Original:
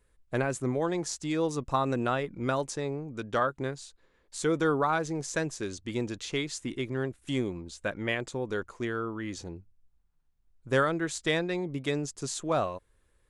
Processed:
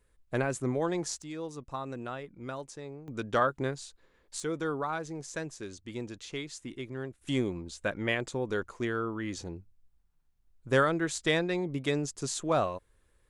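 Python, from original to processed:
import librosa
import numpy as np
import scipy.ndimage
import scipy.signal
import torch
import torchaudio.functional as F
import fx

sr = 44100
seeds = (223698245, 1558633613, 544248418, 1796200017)

y = fx.gain(x, sr, db=fx.steps((0.0, -1.0), (1.22, -10.0), (3.08, 1.0), (4.4, -6.5), (7.21, 0.5)))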